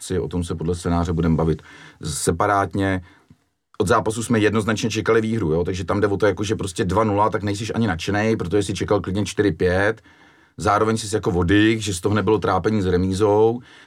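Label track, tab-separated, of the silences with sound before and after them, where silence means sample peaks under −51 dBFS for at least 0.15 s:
3.420000	3.740000	silence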